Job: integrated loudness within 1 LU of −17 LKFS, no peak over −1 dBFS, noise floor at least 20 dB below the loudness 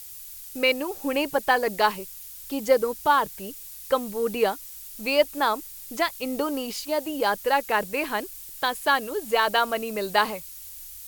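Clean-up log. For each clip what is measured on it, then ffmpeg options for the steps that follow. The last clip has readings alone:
background noise floor −42 dBFS; target noise floor −45 dBFS; integrated loudness −25.0 LKFS; sample peak −5.5 dBFS; target loudness −17.0 LKFS
→ -af "afftdn=noise_reduction=6:noise_floor=-42"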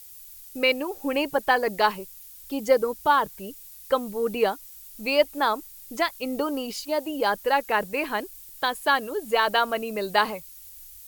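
background noise floor −46 dBFS; integrated loudness −25.0 LKFS; sample peak −6.0 dBFS; target loudness −17.0 LKFS
→ -af "volume=8dB,alimiter=limit=-1dB:level=0:latency=1"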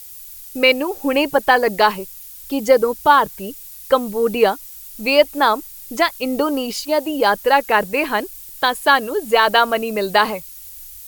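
integrated loudness −17.5 LKFS; sample peak −1.0 dBFS; background noise floor −38 dBFS

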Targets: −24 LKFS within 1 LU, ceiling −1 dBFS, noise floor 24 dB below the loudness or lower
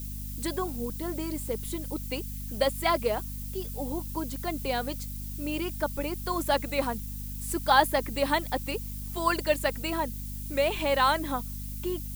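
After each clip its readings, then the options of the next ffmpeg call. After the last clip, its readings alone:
mains hum 50 Hz; hum harmonics up to 250 Hz; level of the hum −35 dBFS; background noise floor −37 dBFS; target noise floor −54 dBFS; integrated loudness −29.5 LKFS; sample peak −7.5 dBFS; target loudness −24.0 LKFS
→ -af "bandreject=frequency=50:width_type=h:width=4,bandreject=frequency=100:width_type=h:width=4,bandreject=frequency=150:width_type=h:width=4,bandreject=frequency=200:width_type=h:width=4,bandreject=frequency=250:width_type=h:width=4"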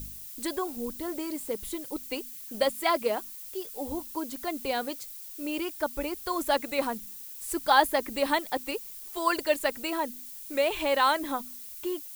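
mains hum none found; background noise floor −43 dBFS; target noise floor −54 dBFS
→ -af "afftdn=noise_reduction=11:noise_floor=-43"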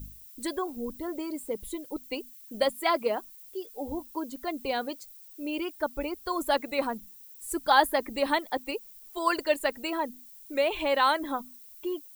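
background noise floor −50 dBFS; target noise floor −54 dBFS
→ -af "afftdn=noise_reduction=6:noise_floor=-50"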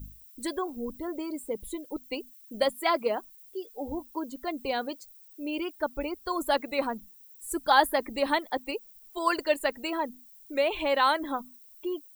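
background noise floor −54 dBFS; integrated loudness −30.0 LKFS; sample peak −7.5 dBFS; target loudness −24.0 LKFS
→ -af "volume=6dB"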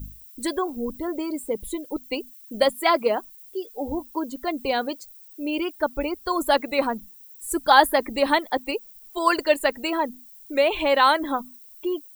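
integrated loudness −24.0 LKFS; sample peak −1.5 dBFS; background noise floor −48 dBFS

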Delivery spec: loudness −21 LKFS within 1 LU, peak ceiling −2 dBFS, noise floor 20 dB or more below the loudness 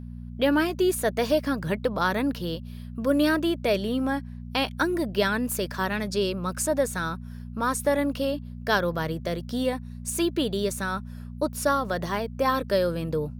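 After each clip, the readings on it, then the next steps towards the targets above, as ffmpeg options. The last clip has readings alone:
mains hum 60 Hz; hum harmonics up to 240 Hz; level of the hum −35 dBFS; integrated loudness −26.5 LKFS; sample peak −9.0 dBFS; target loudness −21.0 LKFS
→ -af "bandreject=frequency=60:width_type=h:width=4,bandreject=frequency=120:width_type=h:width=4,bandreject=frequency=180:width_type=h:width=4,bandreject=frequency=240:width_type=h:width=4"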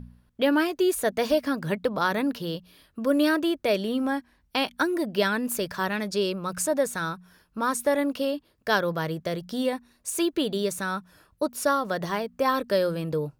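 mains hum none found; integrated loudness −26.5 LKFS; sample peak −9.5 dBFS; target loudness −21.0 LKFS
→ -af "volume=5.5dB"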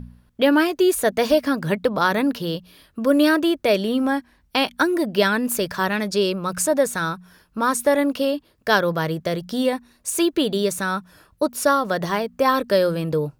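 integrated loudness −21.0 LKFS; sample peak −4.0 dBFS; background noise floor −61 dBFS

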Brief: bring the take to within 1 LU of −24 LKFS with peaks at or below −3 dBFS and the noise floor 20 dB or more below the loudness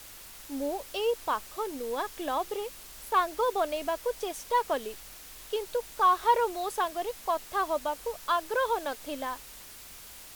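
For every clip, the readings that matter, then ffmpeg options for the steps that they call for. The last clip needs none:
background noise floor −48 dBFS; target noise floor −51 dBFS; integrated loudness −30.5 LKFS; sample peak −12.5 dBFS; target loudness −24.0 LKFS
→ -af "afftdn=noise_reduction=6:noise_floor=-48"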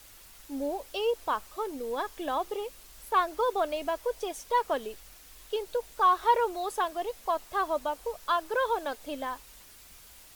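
background noise floor −53 dBFS; integrated loudness −30.5 LKFS; sample peak −12.5 dBFS; target loudness −24.0 LKFS
→ -af "volume=6.5dB"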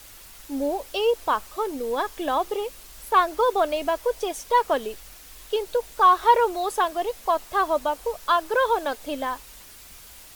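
integrated loudness −24.0 LKFS; sample peak −6.0 dBFS; background noise floor −46 dBFS

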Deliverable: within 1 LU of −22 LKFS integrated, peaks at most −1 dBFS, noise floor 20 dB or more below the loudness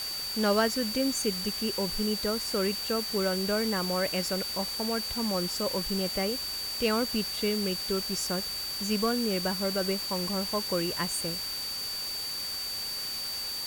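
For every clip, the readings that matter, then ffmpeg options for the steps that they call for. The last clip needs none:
interfering tone 4,600 Hz; level of the tone −33 dBFS; background noise floor −35 dBFS; target noise floor −49 dBFS; integrated loudness −29.0 LKFS; sample peak −12.0 dBFS; target loudness −22.0 LKFS
→ -af "bandreject=frequency=4600:width=30"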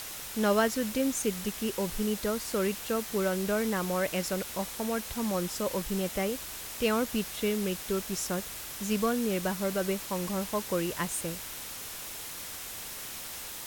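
interfering tone none found; background noise floor −41 dBFS; target noise floor −52 dBFS
→ -af "afftdn=noise_reduction=11:noise_floor=-41"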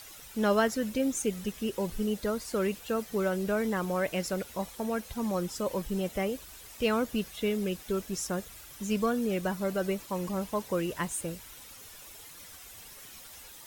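background noise floor −49 dBFS; target noise floor −52 dBFS
→ -af "afftdn=noise_reduction=6:noise_floor=-49"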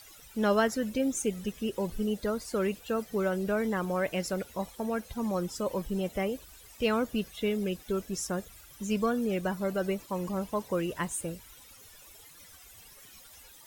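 background noise floor −53 dBFS; integrated loudness −31.5 LKFS; sample peak −13.0 dBFS; target loudness −22.0 LKFS
→ -af "volume=9.5dB"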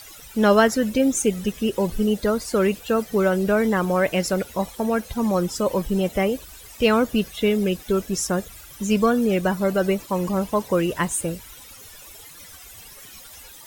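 integrated loudness −22.0 LKFS; sample peak −3.5 dBFS; background noise floor −44 dBFS

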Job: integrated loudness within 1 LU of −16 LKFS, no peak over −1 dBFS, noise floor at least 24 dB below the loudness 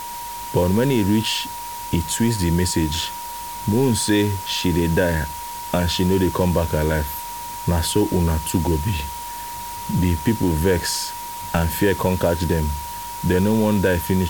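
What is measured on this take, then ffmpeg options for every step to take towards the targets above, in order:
interfering tone 950 Hz; level of the tone −30 dBFS; background noise floor −31 dBFS; target noise floor −45 dBFS; integrated loudness −21.0 LKFS; sample peak −4.5 dBFS; target loudness −16.0 LKFS
→ -af "bandreject=frequency=950:width=30"
-af "afftdn=noise_reduction=14:noise_floor=-31"
-af "volume=5dB,alimiter=limit=-1dB:level=0:latency=1"

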